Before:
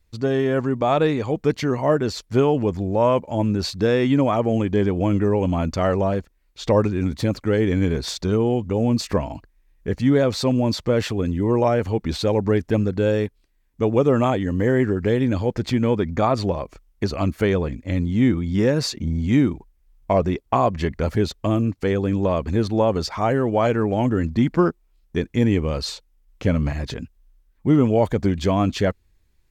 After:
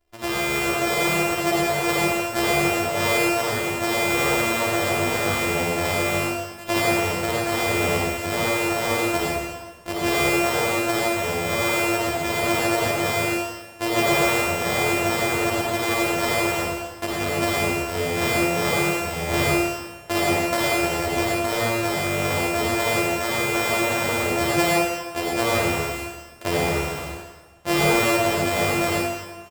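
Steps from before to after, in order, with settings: sorted samples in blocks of 128 samples; resonant low shelf 360 Hz -8.5 dB, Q 1.5; early reflections 12 ms -5.5 dB, 53 ms -8.5 dB; reverberation RT60 1.3 s, pre-delay 48 ms, DRR -5.5 dB; trim -5 dB

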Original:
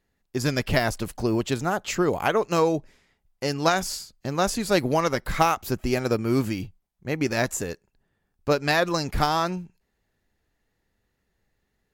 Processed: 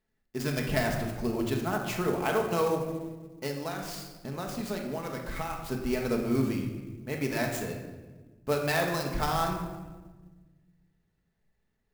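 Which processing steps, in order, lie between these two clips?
3.47–5.60 s: compression 4:1, threshold -27 dBFS, peak gain reduction 11 dB; simulated room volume 1000 m³, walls mixed, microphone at 1.5 m; sampling jitter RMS 0.024 ms; trim -8 dB

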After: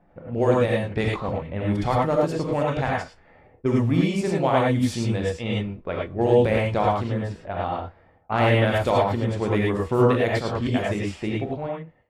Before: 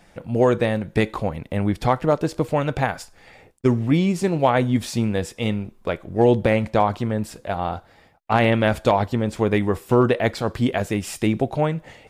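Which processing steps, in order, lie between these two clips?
fade out at the end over 1.04 s; gated-style reverb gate 130 ms rising, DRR -3 dB; level-controlled noise filter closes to 1 kHz, open at -11.5 dBFS; trim -6 dB

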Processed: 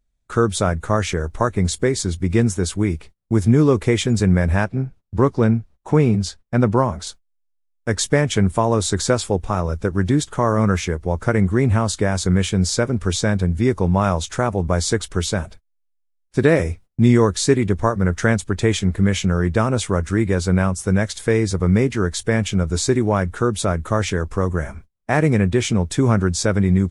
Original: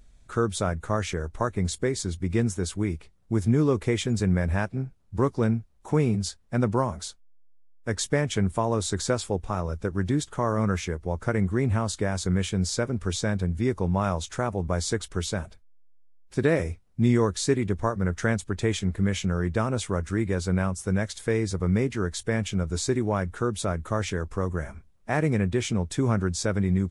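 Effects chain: 4.64–7.07 s: treble shelf 7.7 kHz -11.5 dB; gate -46 dBFS, range -25 dB; trim +7.5 dB

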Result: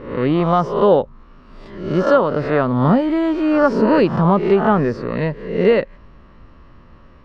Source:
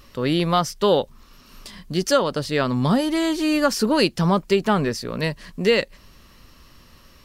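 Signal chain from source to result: reverse spectral sustain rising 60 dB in 0.66 s; low-pass 1.4 kHz 12 dB/octave; trim +4 dB

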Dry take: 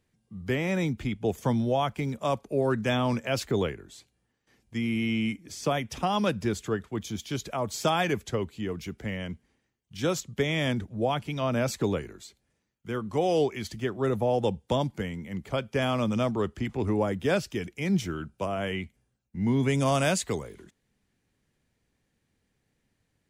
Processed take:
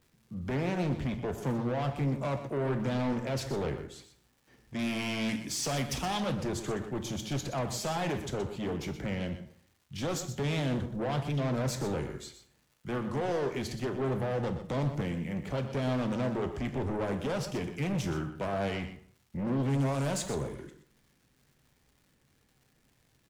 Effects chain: dynamic bell 1.8 kHz, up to -4 dB, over -45 dBFS, Q 0.74; peak limiter -21.5 dBFS, peak gain reduction 8.5 dB; treble shelf 2.4 kHz -7.5 dB, from 4.79 s +7 dB, from 6.20 s -4 dB; saturation -33 dBFS, distortion -9 dB; crackle 340 per s -60 dBFS; delay 123 ms -11 dB; reverberation RT60 0.55 s, pre-delay 3 ms, DRR 7.5 dB; loudspeaker Doppler distortion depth 0.28 ms; trim +4 dB

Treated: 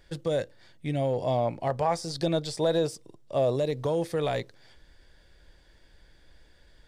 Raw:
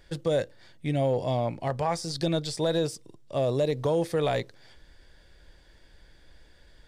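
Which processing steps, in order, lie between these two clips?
1.22–3.56 s: peaking EQ 660 Hz +4.5 dB 1.7 oct; trim -2 dB

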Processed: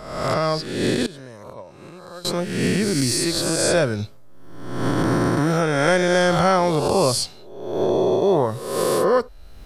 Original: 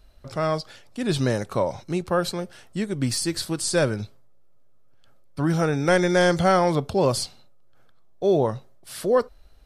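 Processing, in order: reverse spectral sustain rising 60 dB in 1.34 s; recorder AGC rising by 24 dB/s; 1.06–2.25 s: gate -15 dBFS, range -19 dB

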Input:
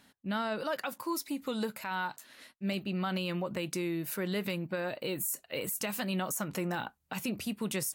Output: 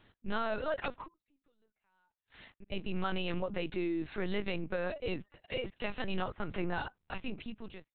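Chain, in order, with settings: fade out at the end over 0.89 s; 1.04–2.72 s: inverted gate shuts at -36 dBFS, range -40 dB; LPC vocoder at 8 kHz pitch kept

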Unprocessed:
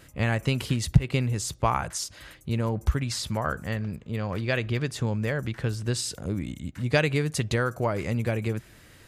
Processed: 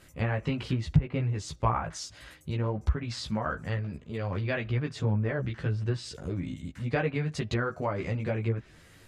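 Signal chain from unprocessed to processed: chorus voices 4, 0.71 Hz, delay 15 ms, depth 4.3 ms; low-pass that closes with the level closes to 1.7 kHz, closed at -23.5 dBFS

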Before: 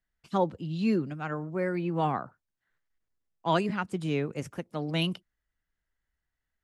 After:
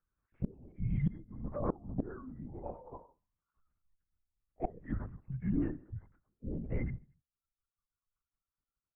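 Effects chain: harmonic-percussive separation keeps harmonic; Doppler pass-by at 2.00 s, 16 m/s, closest 6.2 m; speed mistake 45 rpm record played at 33 rpm; reverb removal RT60 1.4 s; on a send: feedback delay 78 ms, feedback 43%, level -21 dB; on the sum: LPC vocoder at 8 kHz whisper; low-pass 1.8 kHz 24 dB/octave; inverted gate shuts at -34 dBFS, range -25 dB; trim +14 dB

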